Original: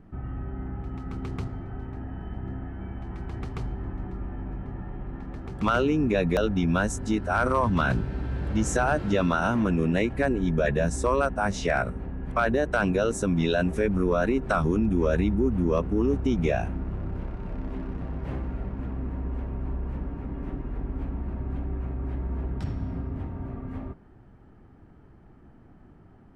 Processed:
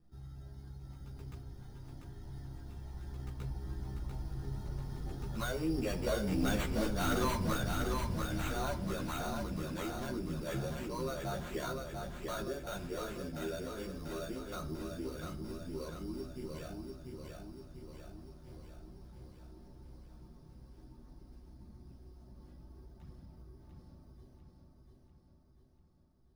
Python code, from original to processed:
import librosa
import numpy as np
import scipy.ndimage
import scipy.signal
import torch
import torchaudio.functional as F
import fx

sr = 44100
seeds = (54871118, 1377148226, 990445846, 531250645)

p1 = fx.doppler_pass(x, sr, speed_mps=16, closest_m=6.2, pass_at_s=6.76)
p2 = fx.dereverb_blind(p1, sr, rt60_s=0.51)
p3 = fx.over_compress(p2, sr, threshold_db=-47.0, ratio=-1.0)
p4 = p2 + (p3 * 10.0 ** (-1.0 / 20.0))
p5 = fx.sample_hold(p4, sr, seeds[0], rate_hz=5100.0, jitter_pct=0)
p6 = 10.0 ** (-27.0 / 20.0) * np.tanh(p5 / 10.0 ** (-27.0 / 20.0))
p7 = fx.chorus_voices(p6, sr, voices=6, hz=0.36, base_ms=14, depth_ms=1.8, mix_pct=50)
p8 = p7 + fx.echo_feedback(p7, sr, ms=693, feedback_pct=57, wet_db=-4, dry=0)
y = fx.room_shoebox(p8, sr, seeds[1], volume_m3=960.0, walls='furnished', distance_m=0.91)